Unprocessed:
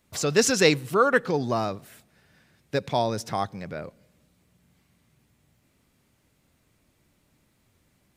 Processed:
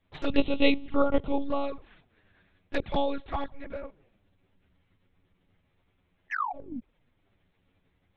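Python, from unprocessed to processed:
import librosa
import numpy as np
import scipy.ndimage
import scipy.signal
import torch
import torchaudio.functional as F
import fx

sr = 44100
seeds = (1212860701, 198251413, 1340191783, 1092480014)

y = fx.spec_paint(x, sr, seeds[0], shape='fall', start_s=6.3, length_s=0.5, low_hz=220.0, high_hz=1900.0, level_db=-28.0)
y = fx.lpc_monotone(y, sr, seeds[1], pitch_hz=280.0, order=8)
y = fx.env_flanger(y, sr, rest_ms=11.3, full_db=-21.0)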